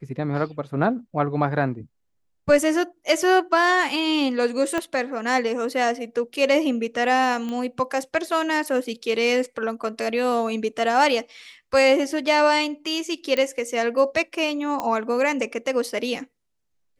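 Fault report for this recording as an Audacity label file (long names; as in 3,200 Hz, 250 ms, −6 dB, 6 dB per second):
4.780000	4.780000	click −12 dBFS
7.490000	7.490000	click −19 dBFS
13.370000	13.370000	click −12 dBFS
14.800000	14.800000	click −13 dBFS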